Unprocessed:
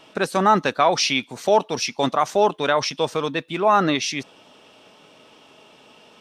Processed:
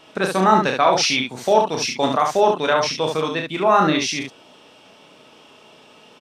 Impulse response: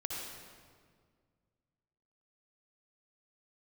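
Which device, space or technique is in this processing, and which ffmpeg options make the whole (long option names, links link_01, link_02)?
slapback doubling: -filter_complex "[0:a]asplit=3[link_01][link_02][link_03];[link_02]adelay=32,volume=-5dB[link_04];[link_03]adelay=70,volume=-5dB[link_05];[link_01][link_04][link_05]amix=inputs=3:normalize=0"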